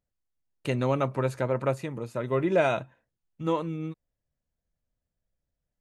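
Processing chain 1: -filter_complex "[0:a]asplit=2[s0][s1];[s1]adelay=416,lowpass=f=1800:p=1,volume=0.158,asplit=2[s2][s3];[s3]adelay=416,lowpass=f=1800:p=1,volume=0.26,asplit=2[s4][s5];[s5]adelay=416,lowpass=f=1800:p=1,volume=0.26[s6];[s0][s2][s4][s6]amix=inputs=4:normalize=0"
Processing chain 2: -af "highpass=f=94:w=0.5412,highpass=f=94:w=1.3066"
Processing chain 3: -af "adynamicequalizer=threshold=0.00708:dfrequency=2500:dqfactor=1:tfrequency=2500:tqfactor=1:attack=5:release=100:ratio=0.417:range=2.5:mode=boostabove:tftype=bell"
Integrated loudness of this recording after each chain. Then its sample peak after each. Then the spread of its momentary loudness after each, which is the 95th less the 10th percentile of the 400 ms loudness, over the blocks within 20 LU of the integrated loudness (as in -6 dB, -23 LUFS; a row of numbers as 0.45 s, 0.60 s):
-29.0 LUFS, -29.0 LUFS, -28.0 LUFS; -11.0 dBFS, -9.5 dBFS, -9.0 dBFS; 14 LU, 11 LU, 11 LU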